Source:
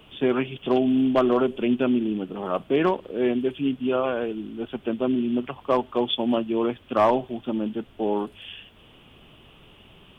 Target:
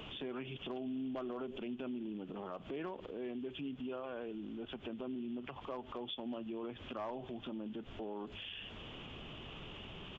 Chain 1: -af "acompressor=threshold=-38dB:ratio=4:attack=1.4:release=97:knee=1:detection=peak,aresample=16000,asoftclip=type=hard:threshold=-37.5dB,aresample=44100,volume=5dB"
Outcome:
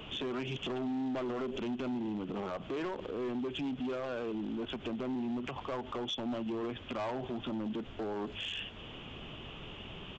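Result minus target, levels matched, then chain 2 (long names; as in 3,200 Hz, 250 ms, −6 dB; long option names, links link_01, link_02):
downward compressor: peak gain reduction −8.5 dB
-af "acompressor=threshold=-49dB:ratio=4:attack=1.4:release=97:knee=1:detection=peak,aresample=16000,asoftclip=type=hard:threshold=-37.5dB,aresample=44100,volume=5dB"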